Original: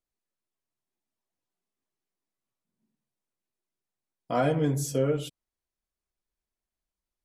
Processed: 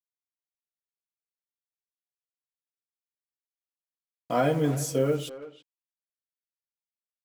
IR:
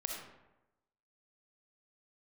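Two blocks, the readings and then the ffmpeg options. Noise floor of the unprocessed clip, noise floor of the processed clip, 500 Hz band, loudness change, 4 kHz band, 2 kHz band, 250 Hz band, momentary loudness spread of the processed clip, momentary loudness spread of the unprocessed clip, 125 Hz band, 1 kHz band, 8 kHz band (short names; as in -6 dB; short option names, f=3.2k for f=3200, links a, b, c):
under -85 dBFS, under -85 dBFS, +1.5 dB, +1.0 dB, +1.5 dB, +1.5 dB, +0.5 dB, 12 LU, 7 LU, -0.5 dB, +1.5 dB, +1.5 dB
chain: -filter_complex "[0:a]highpass=f=110:p=1,acrusher=bits=7:mix=0:aa=0.5,asplit=2[a][b];[b]adelay=330,highpass=300,lowpass=3.4k,asoftclip=type=hard:threshold=-24dB,volume=-14dB[c];[a][c]amix=inputs=2:normalize=0,volume=1.5dB"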